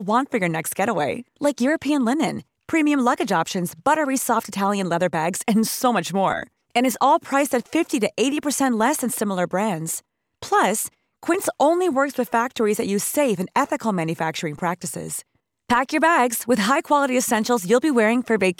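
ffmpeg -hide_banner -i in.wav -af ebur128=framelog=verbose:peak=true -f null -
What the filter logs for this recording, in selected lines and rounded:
Integrated loudness:
  I:         -21.2 LUFS
  Threshold: -31.3 LUFS
Loudness range:
  LRA:         1.9 LU
  Threshold: -41.6 LUFS
  LRA low:   -22.6 LUFS
  LRA high:  -20.7 LUFS
True peak:
  Peak:       -6.2 dBFS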